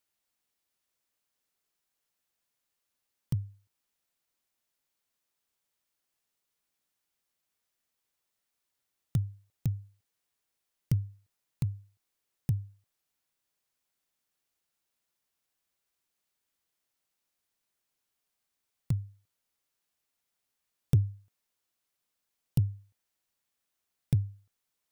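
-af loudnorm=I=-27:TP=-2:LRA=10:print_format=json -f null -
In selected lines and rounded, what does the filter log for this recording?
"input_i" : "-33.6",
"input_tp" : "-13.8",
"input_lra" : "7.9",
"input_thresh" : "-44.8",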